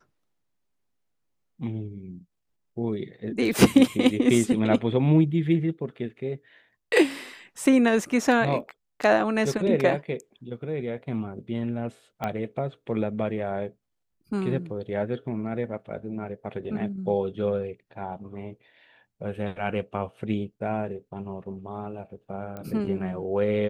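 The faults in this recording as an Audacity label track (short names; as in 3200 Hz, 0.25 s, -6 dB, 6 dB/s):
12.240000	12.240000	pop -16 dBFS
22.570000	22.570000	pop -24 dBFS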